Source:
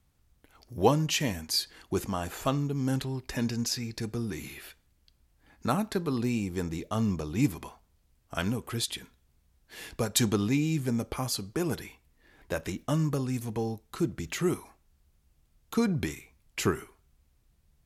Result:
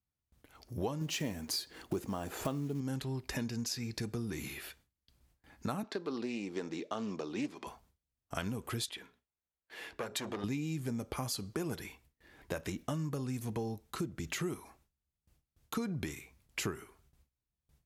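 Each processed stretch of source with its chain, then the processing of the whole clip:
0:01.01–0:02.81: one scale factor per block 5 bits + parametric band 340 Hz +6.5 dB 2.5 octaves
0:05.83–0:07.67: Chebyshev band-pass filter 320–5,000 Hz + highs frequency-modulated by the lows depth 0.16 ms
0:08.89–0:10.44: bass and treble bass −13 dB, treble −12 dB + mains-hum notches 60/120/180/240/300/360/420 Hz + saturating transformer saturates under 1,600 Hz
whole clip: noise gate with hold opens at −56 dBFS; high-pass filter 46 Hz; downward compressor 5 to 1, threshold −34 dBFS

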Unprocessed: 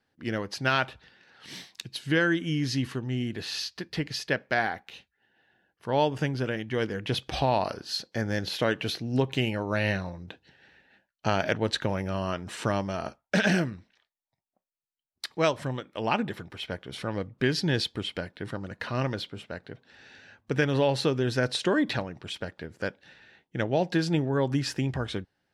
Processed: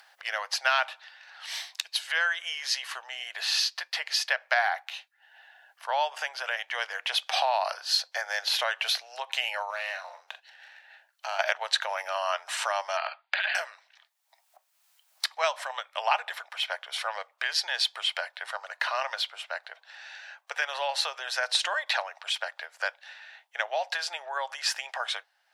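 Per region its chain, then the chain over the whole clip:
0:09.70–0:11.39: leveller curve on the samples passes 1 + double-tracking delay 43 ms −11.5 dB + downward compressor 2 to 1, threshold −45 dBFS
0:12.97–0:13.55: linear-phase brick-wall low-pass 4,900 Hz + parametric band 2,400 Hz +13 dB 2.2 octaves + downward compressor 12 to 1, threshold −31 dBFS
whole clip: downward compressor, threshold −26 dBFS; Butterworth high-pass 650 Hz 48 dB per octave; upward compression, threshold −54 dBFS; level +7.5 dB

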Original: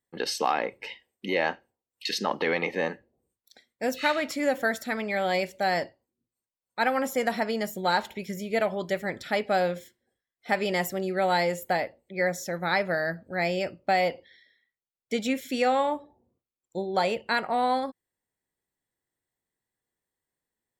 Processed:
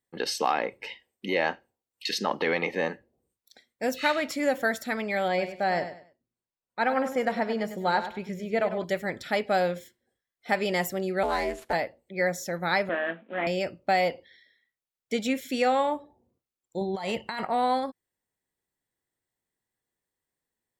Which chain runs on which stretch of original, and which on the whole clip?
0:05.28–0:08.84: low-pass filter 2,400 Hz 6 dB per octave + repeating echo 99 ms, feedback 28%, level −11 dB
0:11.23–0:11.73: variable-slope delta modulation 64 kbit/s + bass and treble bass −3 dB, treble −6 dB + ring modulation 130 Hz
0:12.89–0:13.47: variable-slope delta modulation 16 kbit/s + elliptic high-pass filter 200 Hz + double-tracking delay 18 ms −8 dB
0:16.81–0:17.45: comb filter 1 ms, depth 44% + compressor whose output falls as the input rises −31 dBFS
whole clip: no processing

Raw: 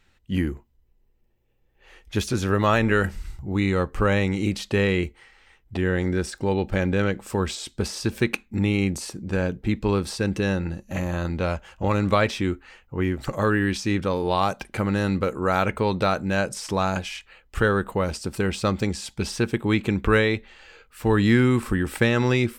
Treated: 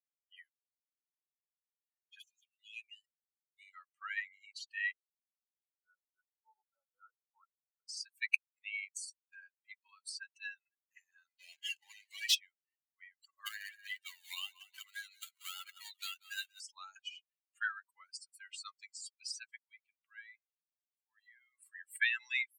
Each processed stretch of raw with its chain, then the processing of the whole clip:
0:02.21–0:03.74: running median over 9 samples + Butterworth high-pass 2,300 Hz 48 dB per octave
0:04.91–0:07.89: linear-phase brick-wall low-pass 1,500 Hz + one half of a high-frequency compander decoder only
0:11.39–0:12.35: downward compressor 5 to 1, threshold −23 dBFS + power curve on the samples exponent 0.35 + Butterworth band-reject 1,300 Hz, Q 2.2
0:13.46–0:16.60: gap after every zero crossing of 0.23 ms + echo with shifted repeats 183 ms, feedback 37%, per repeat −49 Hz, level −9 dB + multiband upward and downward compressor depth 100%
0:19.58–0:21.58: high-shelf EQ 8,000 Hz −8.5 dB + downward compressor 2 to 1, threshold −22 dBFS + tuned comb filter 63 Hz, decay 0.96 s, mix 50%
whole clip: spectral dynamics exaggerated over time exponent 3; Butterworth high-pass 1,700 Hz 36 dB per octave; high-shelf EQ 9,100 Hz −7 dB; level +1.5 dB

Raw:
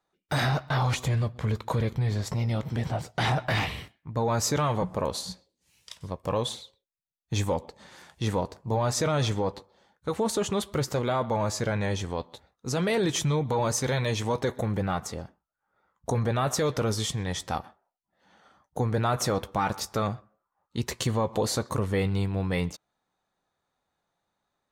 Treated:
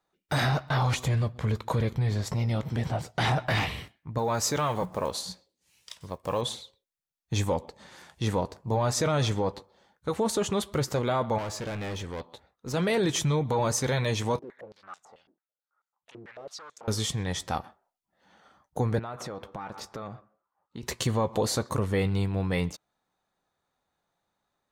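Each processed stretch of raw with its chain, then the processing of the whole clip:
0:04.18–0:06.43: one scale factor per block 7 bits + low-shelf EQ 260 Hz −6 dB
0:11.38–0:12.74: bass and treble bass −3 dB, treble −5 dB + hard clipping −31 dBFS
0:14.39–0:16.88: hard clipping −31 dBFS + band-pass on a step sequencer 9.1 Hz 330–7,100 Hz
0:18.99–0:20.83: low-pass filter 2,100 Hz 6 dB per octave + low-shelf EQ 110 Hz −11.5 dB + downward compressor, threshold −34 dBFS
whole clip: no processing

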